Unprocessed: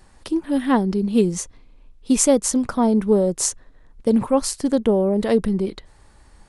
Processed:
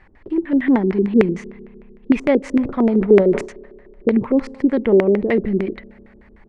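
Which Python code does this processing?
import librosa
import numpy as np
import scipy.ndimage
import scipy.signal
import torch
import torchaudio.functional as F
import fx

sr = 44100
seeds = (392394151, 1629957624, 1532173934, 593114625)

y = fx.rev_spring(x, sr, rt60_s=2.5, pass_ms=(30,), chirp_ms=60, drr_db=20.0)
y = fx.filter_lfo_lowpass(y, sr, shape='square', hz=6.6, low_hz=370.0, high_hz=2100.0, q=4.4)
y = fx.sustainer(y, sr, db_per_s=130.0, at=(2.51, 4.09))
y = F.gain(torch.from_numpy(y), -1.0).numpy()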